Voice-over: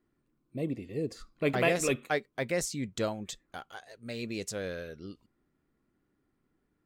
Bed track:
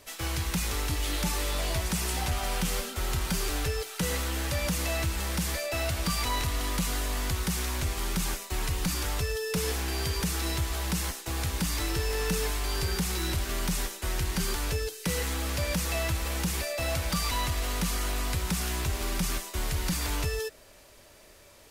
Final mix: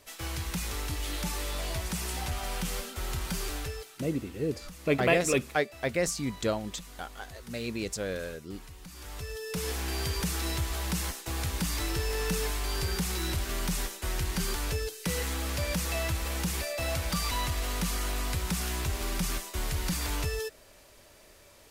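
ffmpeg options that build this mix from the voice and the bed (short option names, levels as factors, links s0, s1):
-filter_complex "[0:a]adelay=3450,volume=1.33[s0];[1:a]volume=4.22,afade=t=out:st=3.46:d=0.67:silence=0.199526,afade=t=in:st=8.91:d=1:silence=0.149624[s1];[s0][s1]amix=inputs=2:normalize=0"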